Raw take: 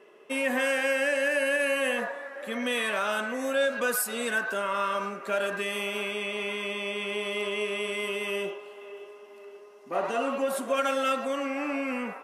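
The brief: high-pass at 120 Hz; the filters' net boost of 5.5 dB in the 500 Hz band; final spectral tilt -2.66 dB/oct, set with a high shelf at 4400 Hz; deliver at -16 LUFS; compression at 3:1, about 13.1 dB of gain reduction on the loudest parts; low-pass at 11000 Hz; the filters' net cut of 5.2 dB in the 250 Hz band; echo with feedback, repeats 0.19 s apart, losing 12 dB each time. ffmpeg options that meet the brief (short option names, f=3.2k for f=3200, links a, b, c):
-af "highpass=120,lowpass=11k,equalizer=f=250:t=o:g=-8,equalizer=f=500:t=o:g=8,highshelf=f=4.4k:g=-8,acompressor=threshold=-36dB:ratio=3,aecho=1:1:190|380|570:0.251|0.0628|0.0157,volume=20dB"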